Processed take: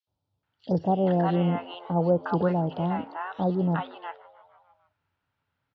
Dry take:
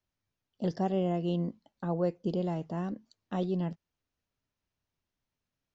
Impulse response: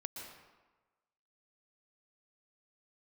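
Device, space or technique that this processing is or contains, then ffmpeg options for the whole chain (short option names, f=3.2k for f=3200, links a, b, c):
frequency-shifting delay pedal into a guitar cabinet: -filter_complex "[0:a]asettb=1/sr,asplit=3[a][b][c];[a]atrim=end=2.664[d];[b]atrim=start=2.66:end=3.46,asetpts=PTS-STARTPTS,afade=t=in:d=0.004:c=qsin,afade=t=out:st=0.796:d=0.004:c=qsin,lowpass=5k[e];[c]atrim=start=3.456[f];[d][e]acrossfade=d=0.004:c1=hsin:c2=qsin[g];[g][f]acrossfade=d=0.004:c1=qsin:c2=hsin,asplit=6[h][i][j][k][l][m];[i]adelay=152,afreqshift=90,volume=-22dB[n];[j]adelay=304,afreqshift=180,volume=-26.3dB[o];[k]adelay=456,afreqshift=270,volume=-30.6dB[p];[l]adelay=608,afreqshift=360,volume=-34.9dB[q];[m]adelay=760,afreqshift=450,volume=-39.2dB[r];[h][n][o][p][q][r]amix=inputs=6:normalize=0,highpass=84,equalizer=f=91:t=q:w=4:g=6,equalizer=f=220:t=q:w=4:g=-8,equalizer=f=370:t=q:w=4:g=-5,equalizer=f=870:t=q:w=4:g=8,equalizer=f=1.4k:t=q:w=4:g=9,lowpass=f=3.9k:w=0.5412,lowpass=f=3.9k:w=1.3066,acrossover=split=840|3700[s][t][u];[s]adelay=70[v];[t]adelay=430[w];[v][w][u]amix=inputs=3:normalize=0,volume=9dB"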